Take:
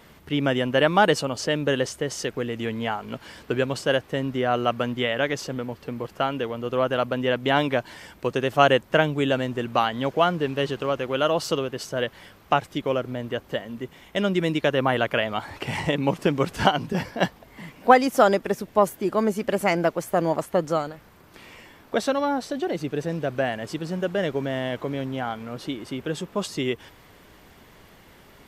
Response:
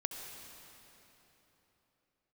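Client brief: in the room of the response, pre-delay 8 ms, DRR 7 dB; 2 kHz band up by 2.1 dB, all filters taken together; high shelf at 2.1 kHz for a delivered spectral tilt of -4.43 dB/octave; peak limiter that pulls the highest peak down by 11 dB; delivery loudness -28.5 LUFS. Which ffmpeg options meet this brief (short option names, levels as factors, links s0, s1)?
-filter_complex "[0:a]equalizer=f=2000:t=o:g=6,highshelf=f=2100:g=-6,alimiter=limit=0.237:level=0:latency=1,asplit=2[s0][s1];[1:a]atrim=start_sample=2205,adelay=8[s2];[s1][s2]afir=irnorm=-1:irlink=0,volume=0.398[s3];[s0][s3]amix=inputs=2:normalize=0,volume=0.708"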